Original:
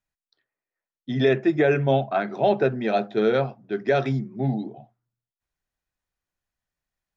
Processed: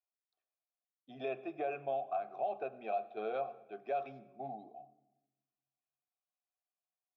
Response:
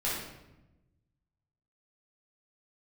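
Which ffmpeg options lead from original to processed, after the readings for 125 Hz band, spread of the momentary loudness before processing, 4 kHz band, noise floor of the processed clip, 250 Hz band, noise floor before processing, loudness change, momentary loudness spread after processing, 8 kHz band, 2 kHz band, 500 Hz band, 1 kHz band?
-32.5 dB, 9 LU, under -20 dB, under -85 dBFS, -25.0 dB, under -85 dBFS, -16.5 dB, 12 LU, n/a, -20.5 dB, -16.5 dB, -10.0 dB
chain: -filter_complex "[0:a]asplit=3[a][b][c];[a]bandpass=f=730:t=q:w=8,volume=0dB[d];[b]bandpass=f=1.09k:t=q:w=8,volume=-6dB[e];[c]bandpass=f=2.44k:t=q:w=8,volume=-9dB[f];[d][e][f]amix=inputs=3:normalize=0,alimiter=level_in=0.5dB:limit=-24dB:level=0:latency=1:release=232,volume=-0.5dB,asplit=2[g][h];[1:a]atrim=start_sample=2205,adelay=77[i];[h][i]afir=irnorm=-1:irlink=0,volume=-25dB[j];[g][j]amix=inputs=2:normalize=0,volume=-2.5dB"

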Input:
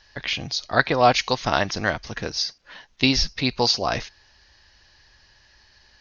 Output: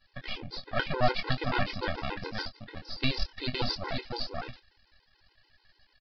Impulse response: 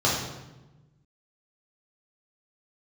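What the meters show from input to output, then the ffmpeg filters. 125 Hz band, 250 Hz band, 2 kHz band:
-5.0 dB, -10.0 dB, -10.0 dB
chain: -filter_complex "[0:a]aecho=1:1:511:0.668,aeval=exprs='max(val(0),0)':c=same,asplit=2[a][b];[b]adelay=24,volume=-9dB[c];[a][c]amix=inputs=2:normalize=0,aresample=11025,aresample=44100,afftfilt=real='re*gt(sin(2*PI*6.9*pts/sr)*(1-2*mod(floor(b*sr/1024/270),2)),0)':imag='im*gt(sin(2*PI*6.9*pts/sr)*(1-2*mod(floor(b*sr/1024/270),2)),0)':win_size=1024:overlap=0.75,volume=-4dB"

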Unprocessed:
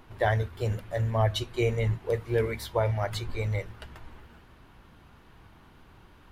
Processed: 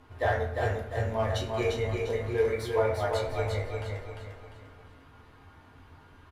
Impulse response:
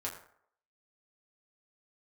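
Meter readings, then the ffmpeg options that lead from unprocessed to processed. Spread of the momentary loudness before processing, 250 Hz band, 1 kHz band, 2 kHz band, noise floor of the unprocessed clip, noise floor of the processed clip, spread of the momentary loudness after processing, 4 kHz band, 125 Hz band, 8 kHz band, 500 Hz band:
6 LU, -2.0 dB, +1.0 dB, +0.5 dB, -55 dBFS, -55 dBFS, 14 LU, -2.5 dB, -4.5 dB, -1.0 dB, +1.5 dB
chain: -filter_complex "[0:a]lowpass=12k,asoftclip=type=hard:threshold=-16.5dB,aecho=1:1:349|698|1047|1396|1745:0.631|0.246|0.096|0.0374|0.0146[a];[1:a]atrim=start_sample=2205[b];[a][b]afir=irnorm=-1:irlink=0,volume=-2dB"

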